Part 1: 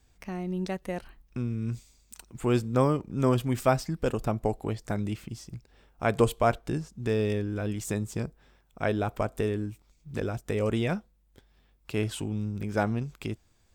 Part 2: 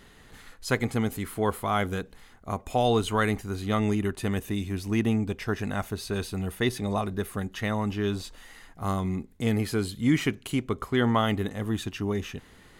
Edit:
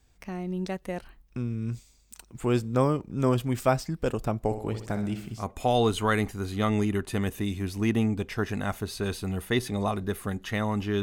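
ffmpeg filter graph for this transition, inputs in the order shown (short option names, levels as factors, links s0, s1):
-filter_complex "[0:a]asettb=1/sr,asplit=3[s0][s1][s2];[s0]atrim=end=4.444[s3];[s1]atrim=start=4.44:end=5.46,asetpts=PTS-STARTPTS,afade=t=in:d=0.004:c=qsin,afade=t=out:st=1.016:d=0.004:c=qsin,aecho=1:1:63|126|189|252|315|378:0.335|0.181|0.0977|0.0527|0.0285|0.0154,atrim=end_sample=44982[s4];[s2]atrim=start=5.456[s5];[s3][s4]acrossfade=d=0.004:c1=hsin:c2=qsin[s6];[s6][s5]acrossfade=d=0.004:c1=qsin:c2=hsin,apad=whole_dur=11.02,atrim=end=11.02,atrim=end=5.46,asetpts=PTS-STARTPTS[s7];[1:a]atrim=start=2.46:end=8.12,asetpts=PTS-STARTPTS[s8];[s7][s8]acrossfade=d=0.1:c1=tri:c2=tri"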